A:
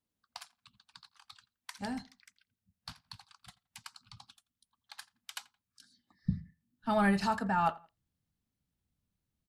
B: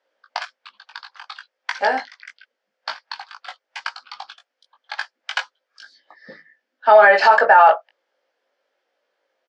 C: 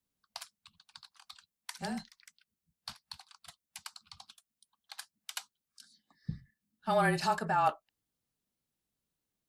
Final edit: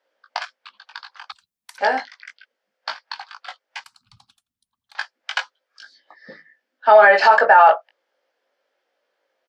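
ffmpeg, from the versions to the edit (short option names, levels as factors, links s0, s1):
-filter_complex "[1:a]asplit=3[s0][s1][s2];[s0]atrim=end=1.322[s3];[2:a]atrim=start=1.318:end=1.782[s4];[s1]atrim=start=1.778:end=3.842[s5];[0:a]atrim=start=3.838:end=4.952[s6];[s2]atrim=start=4.948[s7];[s3][s4]acrossfade=d=0.004:c1=hsin:c2=hsin[s8];[s8][s5]acrossfade=d=0.004:c1=hsin:c2=hsin[s9];[s9][s6]acrossfade=d=0.004:c1=hsin:c2=hsin[s10];[s10][s7]acrossfade=d=0.004:c1=hsin:c2=hsin"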